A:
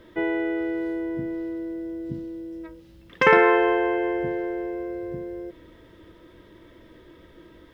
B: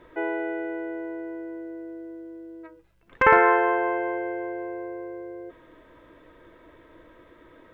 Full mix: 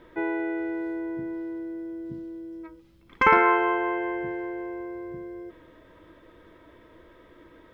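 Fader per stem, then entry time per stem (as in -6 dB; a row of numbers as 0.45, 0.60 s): -8.0, -2.0 dB; 0.00, 0.00 s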